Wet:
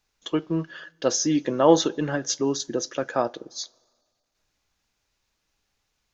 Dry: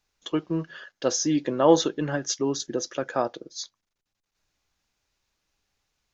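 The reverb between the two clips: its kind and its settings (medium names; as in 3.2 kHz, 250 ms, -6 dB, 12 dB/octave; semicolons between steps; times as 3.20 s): two-slope reverb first 0.21 s, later 1.8 s, from -20 dB, DRR 18 dB; trim +1.5 dB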